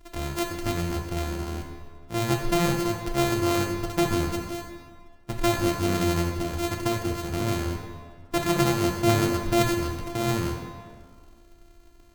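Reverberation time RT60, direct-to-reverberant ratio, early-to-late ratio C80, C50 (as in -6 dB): 1.8 s, 1.5 dB, 6.0 dB, 4.5 dB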